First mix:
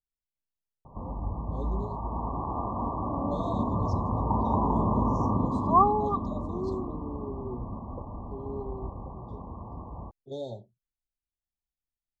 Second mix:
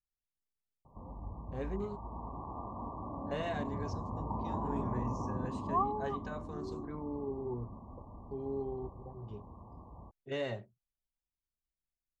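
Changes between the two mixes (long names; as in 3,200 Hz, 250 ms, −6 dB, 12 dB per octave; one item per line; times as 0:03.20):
speech: remove linear-phase brick-wall band-stop 940–3,200 Hz
background −11.0 dB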